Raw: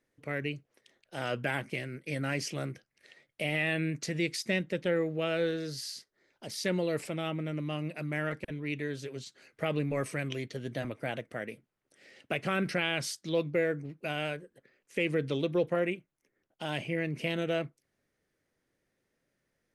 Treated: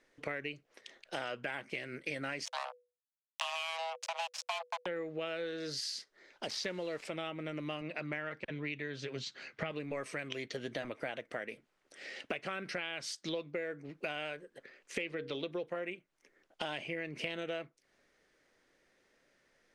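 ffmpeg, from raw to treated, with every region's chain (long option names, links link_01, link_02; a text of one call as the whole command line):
ffmpeg -i in.wav -filter_complex "[0:a]asettb=1/sr,asplit=3[link_01][link_02][link_03];[link_01]atrim=end=2.454[link_04];[link_02]atrim=start=2.45:end=4.86,asetpts=PTS-STARTPTS,afade=type=in:duration=0.004:curve=qsin,afade=type=out:start_time=2.406:duration=0.004:curve=qsin,acrusher=bits=4:mix=0:aa=0.5,afreqshift=490[link_05];[link_03]atrim=start=4.856[link_06];[link_04][link_05]acrossfade=duration=0.004:curve1=hsin:curve2=qsin[link_07];[link_07][link_06]acrossfade=duration=0.004:curve1=qsin:curve2=hsin,asettb=1/sr,asplit=3[link_08][link_09][link_10];[link_08]atrim=end=6.504[link_11];[link_09]atrim=start=6.5:end=7.05,asetpts=PTS-STARTPTS,afade=type=in:duration=0.004:curve=qsin,afade=type=out:start_time=0.546:duration=0.004:curve=qsin,lowpass=5700,aeval=exprs='val(0)*gte(abs(val(0)),0.00531)':channel_layout=same[link_12];[link_10]atrim=start=7.046[link_13];[link_11][link_12]acrossfade=duration=0.004:curve1=hsin:curve2=qsin[link_14];[link_14][link_13]acrossfade=duration=0.004:curve1=qsin:curve2=hsin,asettb=1/sr,asplit=3[link_15][link_16][link_17];[link_15]atrim=end=7.814[link_18];[link_16]atrim=start=7.81:end=9.71,asetpts=PTS-STARTPTS,afade=type=in:duration=0.004:curve=qsin,afade=type=out:start_time=1.896:duration=0.004:curve=qsin,asubboost=boost=8:cutoff=170,highpass=110,lowpass=5200[link_19];[link_17]atrim=start=9.706[link_20];[link_18][link_19]acrossfade=duration=0.004:curve1=hsin:curve2=qsin[link_21];[link_21][link_20]acrossfade=duration=0.004:curve1=qsin:curve2=hsin,asettb=1/sr,asplit=3[link_22][link_23][link_24];[link_22]atrim=end=15.014[link_25];[link_23]atrim=start=15.01:end=15.51,asetpts=PTS-STARTPTS,afade=type=in:duration=0.004:curve=qsin,afade=type=out:start_time=0.496:duration=0.004:curve=qsin,highshelf=frequency=5700:width_type=q:width=1.5:gain=-6.5,bandreject=frequency=60:width_type=h:width=6,bandreject=frequency=120:width_type=h:width=6,bandreject=frequency=180:width_type=h:width=6,bandreject=frequency=240:width_type=h:width=6,bandreject=frequency=300:width_type=h:width=6,bandreject=frequency=360:width_type=h:width=6,bandreject=frequency=420:width_type=h:width=6,bandreject=frequency=480:width_type=h:width=6,bandreject=frequency=540:width_type=h:width=6,bandreject=frequency=600:width_type=h:width=6[link_26];[link_24]atrim=start=15.506[link_27];[link_25][link_26]acrossfade=duration=0.004:curve1=hsin:curve2=qsin[link_28];[link_28][link_27]acrossfade=duration=0.004:curve1=qsin:curve2=hsin,lowpass=6700,equalizer=frequency=99:width=0.47:gain=-14.5,acompressor=threshold=-47dB:ratio=8,volume=11dB" out.wav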